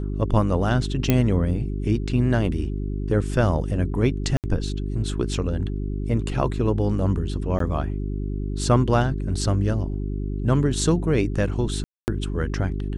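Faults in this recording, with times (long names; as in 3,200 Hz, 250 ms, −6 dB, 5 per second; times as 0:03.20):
mains hum 50 Hz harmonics 8 −27 dBFS
0:01.10: click −5 dBFS
0:04.37–0:04.44: drop-out 68 ms
0:07.59–0:07.60: drop-out 13 ms
0:11.84–0:12.08: drop-out 239 ms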